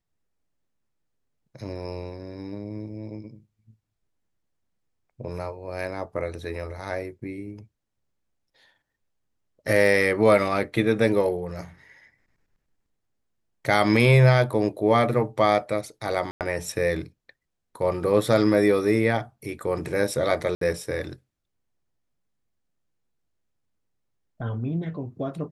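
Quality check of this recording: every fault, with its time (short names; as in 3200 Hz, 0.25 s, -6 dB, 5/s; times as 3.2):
16.31–16.41 gap 98 ms
20.55–20.61 gap 63 ms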